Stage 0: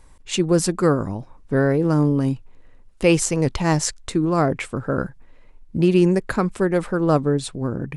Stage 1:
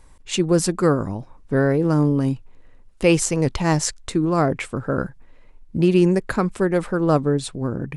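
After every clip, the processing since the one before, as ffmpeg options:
-af anull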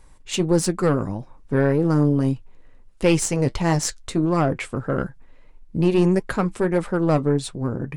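-af "aeval=exprs='(tanh(3.16*val(0)+0.4)-tanh(0.4))/3.16':c=same,flanger=delay=5:depth=3.3:regen=-60:speed=1.6:shape=triangular,volume=1.68"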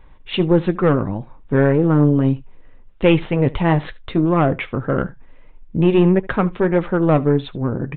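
-af "aecho=1:1:74:0.0794,aresample=8000,aresample=44100,volume=1.58"

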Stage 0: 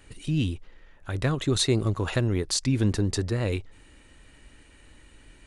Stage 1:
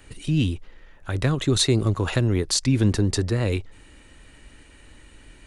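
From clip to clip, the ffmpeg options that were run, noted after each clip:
-filter_complex "[0:a]acrossover=split=350|3000[s0][s1][s2];[s1]acompressor=threshold=0.0355:ratio=6[s3];[s0][s3][s2]amix=inputs=3:normalize=0,volume=1.58"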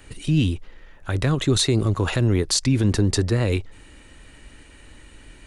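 -af "alimiter=level_in=3.76:limit=0.891:release=50:level=0:latency=1,volume=0.355"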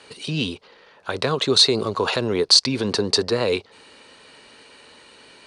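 -af "highpass=290,equalizer=f=310:t=q:w=4:g=-9,equalizer=f=450:t=q:w=4:g=5,equalizer=f=1000:t=q:w=4:g=4,equalizer=f=1900:t=q:w=4:g=-5,equalizer=f=4400:t=q:w=4:g=9,equalizer=f=7200:t=q:w=4:g=-8,lowpass=f=8700:w=0.5412,lowpass=f=8700:w=1.3066,volume=1.58"

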